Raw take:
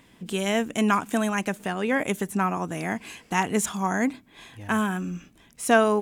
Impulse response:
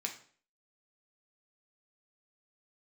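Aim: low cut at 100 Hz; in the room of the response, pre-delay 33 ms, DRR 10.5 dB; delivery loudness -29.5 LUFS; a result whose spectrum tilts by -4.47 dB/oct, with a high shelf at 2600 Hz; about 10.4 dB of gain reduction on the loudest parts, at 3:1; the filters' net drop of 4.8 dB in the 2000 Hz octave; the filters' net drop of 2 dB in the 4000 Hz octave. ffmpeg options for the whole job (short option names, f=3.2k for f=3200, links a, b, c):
-filter_complex "[0:a]highpass=100,equalizer=f=2k:t=o:g=-8,highshelf=f=2.6k:g=5.5,equalizer=f=4k:t=o:g=-3.5,acompressor=threshold=-28dB:ratio=3,asplit=2[a][b];[1:a]atrim=start_sample=2205,adelay=33[c];[b][c]afir=irnorm=-1:irlink=0,volume=-11.5dB[d];[a][d]amix=inputs=2:normalize=0,volume=1.5dB"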